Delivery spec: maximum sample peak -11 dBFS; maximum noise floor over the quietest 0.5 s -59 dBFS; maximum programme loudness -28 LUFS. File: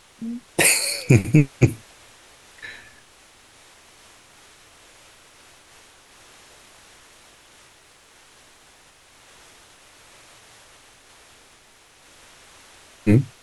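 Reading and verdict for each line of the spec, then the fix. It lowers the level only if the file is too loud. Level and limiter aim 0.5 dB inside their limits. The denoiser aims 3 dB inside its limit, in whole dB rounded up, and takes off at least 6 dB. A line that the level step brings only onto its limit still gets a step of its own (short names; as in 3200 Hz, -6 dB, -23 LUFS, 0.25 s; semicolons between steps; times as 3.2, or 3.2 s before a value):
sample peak -2.5 dBFS: fail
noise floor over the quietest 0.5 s -53 dBFS: fail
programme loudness -19.0 LUFS: fail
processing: gain -9.5 dB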